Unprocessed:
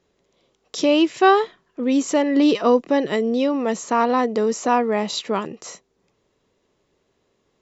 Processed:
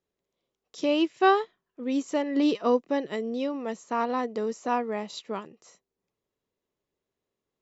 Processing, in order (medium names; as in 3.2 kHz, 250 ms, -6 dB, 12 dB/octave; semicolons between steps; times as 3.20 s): upward expansion 1.5:1, over -37 dBFS; trim -5.5 dB